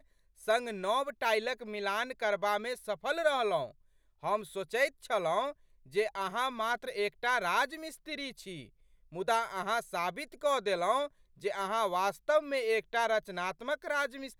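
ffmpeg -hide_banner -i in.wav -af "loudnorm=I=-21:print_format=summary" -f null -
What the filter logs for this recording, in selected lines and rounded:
Input Integrated:    -32.6 LUFS
Input True Peak:     -15.4 dBTP
Input LRA:             1.8 LU
Input Threshold:     -42.9 LUFS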